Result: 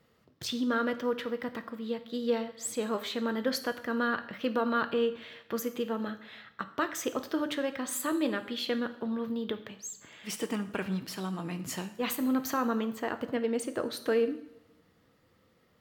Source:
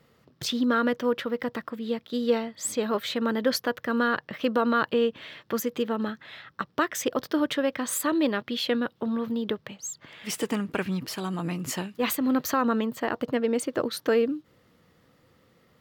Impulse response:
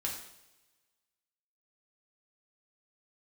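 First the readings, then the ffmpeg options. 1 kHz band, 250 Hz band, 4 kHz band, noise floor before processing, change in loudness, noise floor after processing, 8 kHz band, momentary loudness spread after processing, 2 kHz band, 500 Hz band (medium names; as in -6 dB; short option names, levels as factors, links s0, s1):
-5.0 dB, -5.0 dB, -5.0 dB, -64 dBFS, -5.0 dB, -66 dBFS, -5.0 dB, 10 LU, -4.5 dB, -4.5 dB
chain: -filter_complex "[0:a]asplit=2[s0][s1];[1:a]atrim=start_sample=2205[s2];[s1][s2]afir=irnorm=-1:irlink=0,volume=0.501[s3];[s0][s3]amix=inputs=2:normalize=0,volume=0.376"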